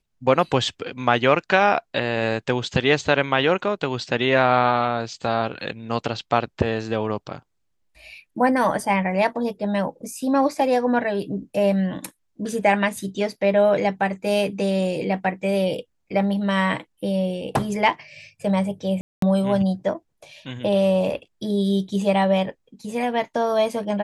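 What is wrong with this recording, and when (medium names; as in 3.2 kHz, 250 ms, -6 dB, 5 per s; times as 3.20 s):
19.01–19.22 s: dropout 213 ms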